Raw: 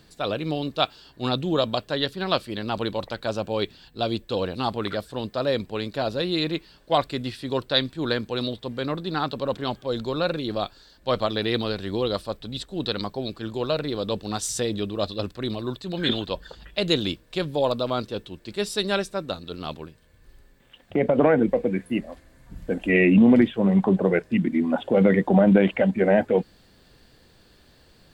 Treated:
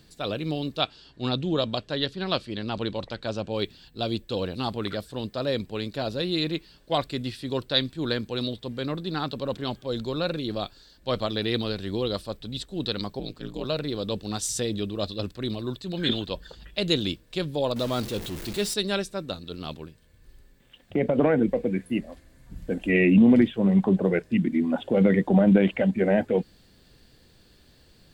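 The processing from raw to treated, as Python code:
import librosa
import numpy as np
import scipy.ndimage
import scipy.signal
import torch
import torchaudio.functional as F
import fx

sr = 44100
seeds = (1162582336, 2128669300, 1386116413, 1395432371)

y = fx.lowpass(x, sr, hz=6400.0, slope=12, at=(0.79, 3.55))
y = fx.ring_mod(y, sr, carrier_hz=82.0, at=(13.19, 13.65))
y = fx.zero_step(y, sr, step_db=-30.5, at=(17.76, 18.74))
y = fx.peak_eq(y, sr, hz=970.0, db=-5.5, octaves=2.3)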